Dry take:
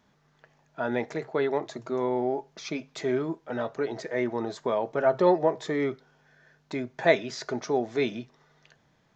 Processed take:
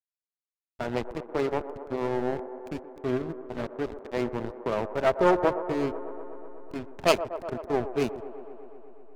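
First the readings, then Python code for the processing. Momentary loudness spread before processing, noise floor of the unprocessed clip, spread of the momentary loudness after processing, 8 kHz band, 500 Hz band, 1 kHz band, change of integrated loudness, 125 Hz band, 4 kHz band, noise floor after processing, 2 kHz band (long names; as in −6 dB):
12 LU, −66 dBFS, 15 LU, can't be measured, −1.0 dB, +0.5 dB, −1.0 dB, +1.0 dB, +1.0 dB, below −85 dBFS, −2.5 dB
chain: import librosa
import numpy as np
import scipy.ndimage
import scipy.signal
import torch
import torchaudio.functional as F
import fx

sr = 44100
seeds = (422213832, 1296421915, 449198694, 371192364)

p1 = fx.self_delay(x, sr, depth_ms=0.28)
p2 = fx.backlash(p1, sr, play_db=-23.0)
p3 = p2 + fx.echo_wet_bandpass(p2, sr, ms=123, feedback_pct=78, hz=620.0, wet_db=-11, dry=0)
y = F.gain(torch.from_numpy(p3), 1.0).numpy()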